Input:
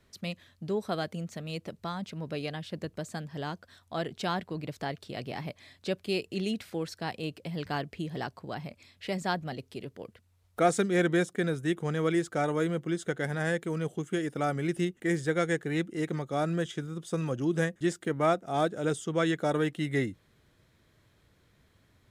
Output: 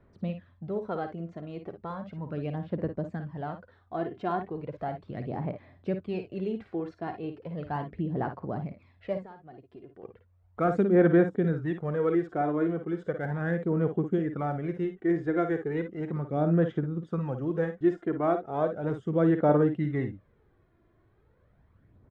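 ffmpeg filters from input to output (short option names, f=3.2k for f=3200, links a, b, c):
-filter_complex "[0:a]lowpass=1.2k,asettb=1/sr,asplit=3[a][b][c];[a]atrim=end=9.174[d];[b]atrim=start=9.17:end=10.03,asetpts=PTS-STARTPTS,afade=t=in:d=0.004:c=qsin,afade=t=out:st=0.856:d=0.004:c=qsin,acompressor=threshold=-45dB:ratio=12[e];[c]atrim=start=10.026[f];[d][e]acrossfade=d=0.004:c1=hsin:c2=qsin[g];[g][f]acrossfade=d=0.004:c1=qsin:c2=hsin,aphaser=in_gain=1:out_gain=1:delay=2.9:decay=0.5:speed=0.36:type=sinusoidal,aecho=1:1:54|64:0.355|0.158"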